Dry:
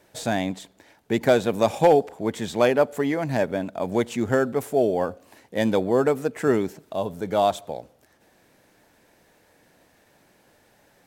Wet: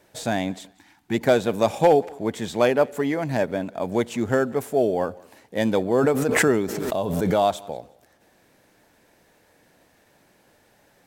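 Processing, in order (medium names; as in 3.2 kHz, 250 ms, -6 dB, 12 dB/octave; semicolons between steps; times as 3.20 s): thinning echo 183 ms, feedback 27%, high-pass 180 Hz, level -24 dB; 0.74–1.14 s: time-frequency box 350–710 Hz -15 dB; 5.98–7.69 s: swell ahead of each attack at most 24 dB/s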